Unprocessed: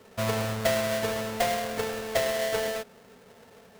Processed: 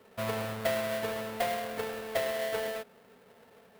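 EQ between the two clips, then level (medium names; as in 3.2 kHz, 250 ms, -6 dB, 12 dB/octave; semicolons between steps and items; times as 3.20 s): bass shelf 130 Hz -7.5 dB; peaking EQ 6.3 kHz -7 dB 1.1 oct; -4.0 dB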